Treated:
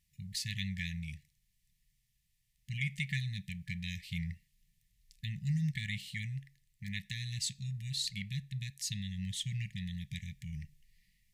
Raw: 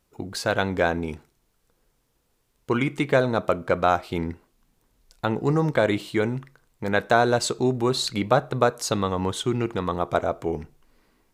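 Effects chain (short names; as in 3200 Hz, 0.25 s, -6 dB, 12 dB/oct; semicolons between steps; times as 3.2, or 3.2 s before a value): brick-wall FIR band-stop 200–1700 Hz; vocal rider within 3 dB 2 s; gain -7.5 dB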